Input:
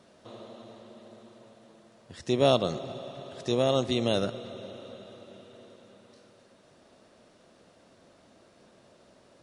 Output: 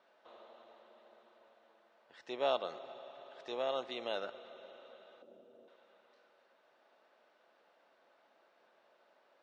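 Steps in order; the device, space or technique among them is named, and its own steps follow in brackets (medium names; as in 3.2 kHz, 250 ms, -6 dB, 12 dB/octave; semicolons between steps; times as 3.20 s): 5.22–5.68 s: graphic EQ 125/250/500/1000/2000/4000 Hz +8/+9/+4/-7/-11/-8 dB; tin-can telephone (band-pass 650–2800 Hz; small resonant body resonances 850/1500 Hz, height 8 dB, ringing for 95 ms); trim -6 dB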